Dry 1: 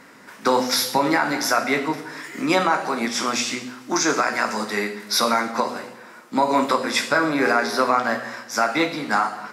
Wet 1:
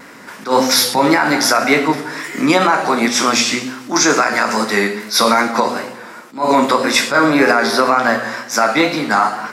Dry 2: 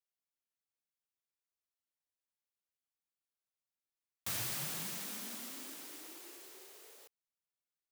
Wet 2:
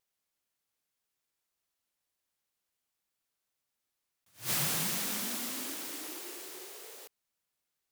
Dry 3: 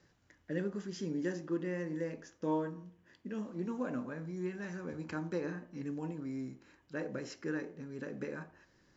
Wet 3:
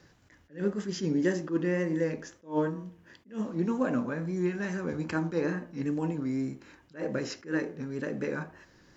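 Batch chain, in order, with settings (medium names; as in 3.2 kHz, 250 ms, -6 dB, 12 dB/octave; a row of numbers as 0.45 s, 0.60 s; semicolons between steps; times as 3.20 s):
wow and flutter 47 cents; loudness maximiser +10 dB; attacks held to a fixed rise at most 220 dB/s; trim -1 dB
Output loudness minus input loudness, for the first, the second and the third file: +7.0 LU, +7.0 LU, +8.0 LU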